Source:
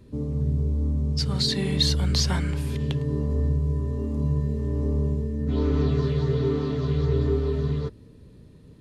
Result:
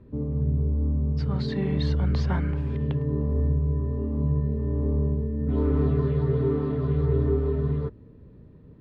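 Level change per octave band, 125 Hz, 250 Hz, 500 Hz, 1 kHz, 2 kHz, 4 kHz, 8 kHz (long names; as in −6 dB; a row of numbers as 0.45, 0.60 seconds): 0.0 dB, 0.0 dB, 0.0 dB, −0.5 dB, −4.5 dB, below −15 dB, below −20 dB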